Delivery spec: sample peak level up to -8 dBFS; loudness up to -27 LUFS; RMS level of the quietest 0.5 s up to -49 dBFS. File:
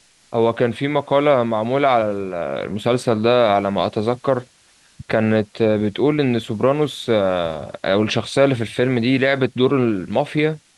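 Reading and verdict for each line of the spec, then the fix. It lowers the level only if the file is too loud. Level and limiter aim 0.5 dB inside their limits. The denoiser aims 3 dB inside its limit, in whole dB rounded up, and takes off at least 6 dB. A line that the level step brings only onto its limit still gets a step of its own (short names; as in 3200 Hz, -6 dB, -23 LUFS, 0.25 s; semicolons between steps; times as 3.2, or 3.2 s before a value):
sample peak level -4.5 dBFS: fail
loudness -19.0 LUFS: fail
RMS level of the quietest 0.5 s -54 dBFS: OK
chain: gain -8.5 dB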